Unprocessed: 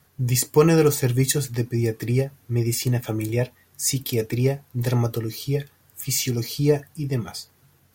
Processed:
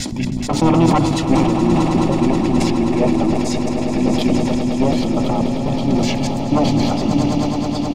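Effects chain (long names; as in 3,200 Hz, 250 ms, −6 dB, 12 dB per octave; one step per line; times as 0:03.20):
slices reordered back to front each 123 ms, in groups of 4
in parallel at −1.5 dB: downward compressor 6 to 1, threshold −29 dBFS, peak gain reduction 17 dB
on the sum: low-pass filter 2,200 Hz 12 dB per octave
mains-hum notches 60/120/180/240/300/360/420 Hz
sine wavefolder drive 7 dB, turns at −4.5 dBFS
phaser with its sweep stopped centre 440 Hz, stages 6
single-tap delay 953 ms −19 dB
pitch-shifted copies added −5 semitones −7 dB
on a send: echo that builds up and dies away 106 ms, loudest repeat 8, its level −12.5 dB
on the sum: level that may fall only so fast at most 23 dB per second
level −1 dB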